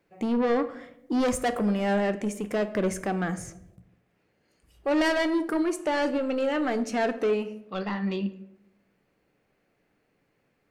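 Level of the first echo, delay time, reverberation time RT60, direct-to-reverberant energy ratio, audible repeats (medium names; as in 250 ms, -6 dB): no echo, no echo, 0.85 s, 10.0 dB, no echo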